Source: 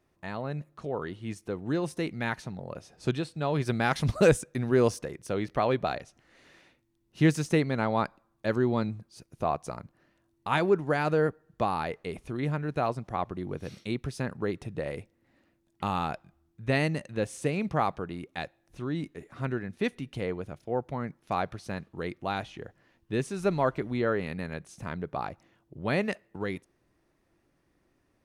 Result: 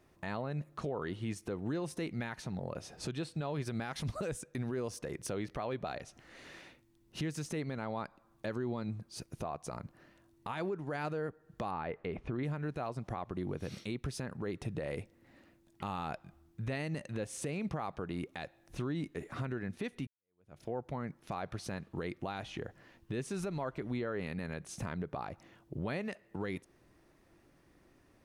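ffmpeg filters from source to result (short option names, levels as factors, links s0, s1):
-filter_complex "[0:a]asettb=1/sr,asplit=3[s0][s1][s2];[s0]atrim=end=11.714[s3];[s1]atrim=start=11.71:end=12.43,asetpts=PTS-STARTPTS,afade=t=in:d=0.004:c=qsin,afade=t=out:st=0.716:d=0.004:c=qsin,lowpass=2300[s4];[s2]atrim=start=12.426[s5];[s3][s4]acrossfade=d=0.004:c1=hsin:c2=qsin[s6];[s6][s5]acrossfade=d=0.004:c1=qsin:c2=hsin,asplit=2[s7][s8];[s7]atrim=end=20.07,asetpts=PTS-STARTPTS,afade=t=out:st=20.066:d=0.004:c=hsin[s9];[s8]atrim=start=20.07,asetpts=PTS-STARTPTS,afade=t=in:d=0.56:c=exp[s10];[s9][s10]concat=n=2:v=0:a=1,acompressor=threshold=0.01:ratio=2.5,alimiter=level_in=2.99:limit=0.0631:level=0:latency=1:release=73,volume=0.335,volume=1.88"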